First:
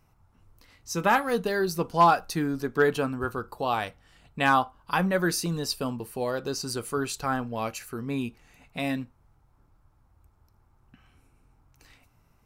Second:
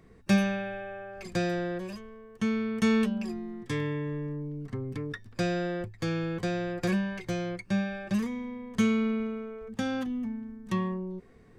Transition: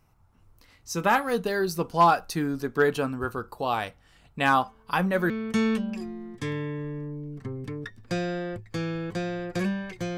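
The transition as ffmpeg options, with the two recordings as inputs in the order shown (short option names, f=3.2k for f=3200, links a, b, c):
-filter_complex "[1:a]asplit=2[a][b];[0:a]apad=whole_dur=10.17,atrim=end=10.17,atrim=end=5.302[c];[b]atrim=start=2.578:end=7.45[d];[a]atrim=start=1.8:end=2.58,asetpts=PTS-STARTPTS,volume=-15dB,afade=t=in:d=0.004:c=hsin,afade=t=out:st=0.776:d=0.004:c=hsin,adelay=4520[e];[c][d]acrossfade=d=0.004:c1=hsin:c2=hsin[f];[f][e]amix=inputs=2:normalize=0"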